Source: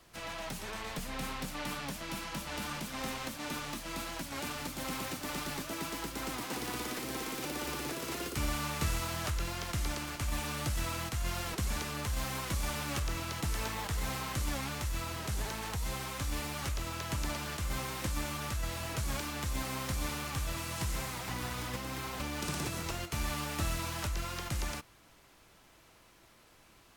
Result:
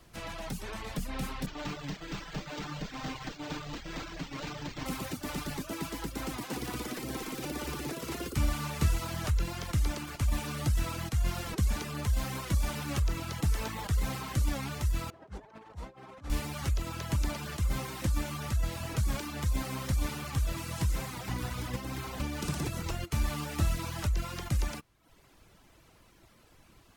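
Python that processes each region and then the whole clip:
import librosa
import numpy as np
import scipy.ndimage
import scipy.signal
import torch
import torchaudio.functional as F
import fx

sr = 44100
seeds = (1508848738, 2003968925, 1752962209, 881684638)

y = fx.chain(x, sr, fx.lower_of_two(delay_ms=6.6),
    fx.high_shelf(hz=5200.0, db=5.0),
    fx.resample_linear(factor=4), at=(1.46, 4.86))
y = fx.chain(y, sr, fx.bandpass_q(hz=590.0, q=0.69),
    fx.over_compress(threshold_db=-48.0, ratio=-0.5), at=(15.1, 16.3))
y = fx.dereverb_blind(y, sr, rt60_s=0.73)
y = fx.low_shelf(y, sr, hz=340.0, db=8.0)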